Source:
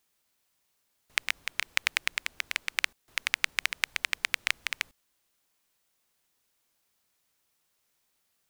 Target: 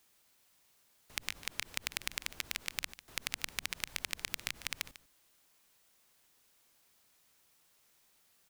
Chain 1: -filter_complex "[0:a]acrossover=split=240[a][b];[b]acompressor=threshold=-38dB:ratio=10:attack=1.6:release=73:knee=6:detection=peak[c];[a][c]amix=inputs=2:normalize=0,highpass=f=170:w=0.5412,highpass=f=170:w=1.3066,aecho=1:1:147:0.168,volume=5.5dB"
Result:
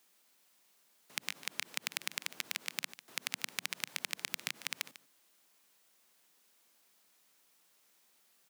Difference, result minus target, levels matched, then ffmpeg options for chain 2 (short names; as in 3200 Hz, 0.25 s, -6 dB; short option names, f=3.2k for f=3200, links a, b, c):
125 Hz band -8.0 dB
-filter_complex "[0:a]acrossover=split=240[a][b];[b]acompressor=threshold=-38dB:ratio=10:attack=1.6:release=73:knee=6:detection=peak[c];[a][c]amix=inputs=2:normalize=0,aecho=1:1:147:0.168,volume=5.5dB"